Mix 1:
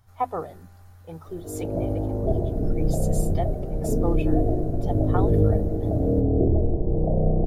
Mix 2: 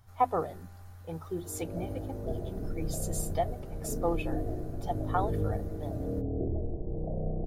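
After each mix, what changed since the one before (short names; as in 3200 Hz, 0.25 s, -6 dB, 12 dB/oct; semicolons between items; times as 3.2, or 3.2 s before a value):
background -12.0 dB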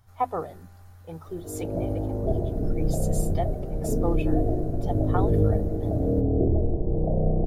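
background +10.0 dB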